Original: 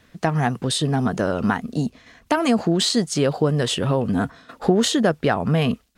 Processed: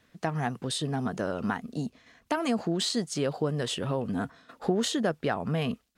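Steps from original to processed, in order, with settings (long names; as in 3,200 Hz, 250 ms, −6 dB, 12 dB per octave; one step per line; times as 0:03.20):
low-shelf EQ 72 Hz −8 dB
level −8.5 dB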